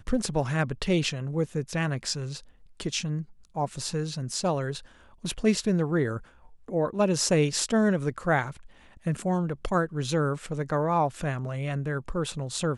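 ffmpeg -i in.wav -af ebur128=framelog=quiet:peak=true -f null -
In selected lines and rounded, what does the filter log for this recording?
Integrated loudness:
  I:         -28.1 LUFS
  Threshold: -38.4 LUFS
Loudness range:
  LRA:         5.2 LU
  Threshold: -48.3 LUFS
  LRA low:   -31.4 LUFS
  LRA high:  -26.2 LUFS
True peak:
  Peak:      -10.0 dBFS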